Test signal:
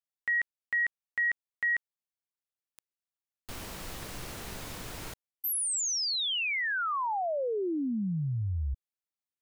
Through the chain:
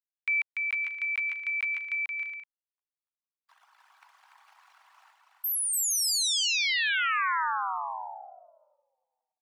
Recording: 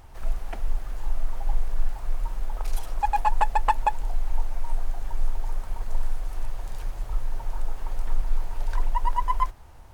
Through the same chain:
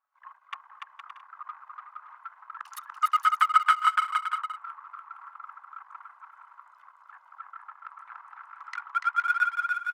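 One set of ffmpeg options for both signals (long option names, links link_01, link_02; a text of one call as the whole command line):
ffmpeg -i in.wav -filter_complex "[0:a]anlmdn=3.98,highpass=frequency=500:width=0.5412,highpass=frequency=500:width=1.3066,asplit=2[link_01][link_02];[link_02]acompressor=threshold=-42dB:ratio=6:attack=8.5:release=130:knee=1:detection=rms,volume=-1.5dB[link_03];[link_01][link_03]amix=inputs=2:normalize=0,afreqshift=420,aecho=1:1:290|464|568.4|631|668.6:0.631|0.398|0.251|0.158|0.1" out.wav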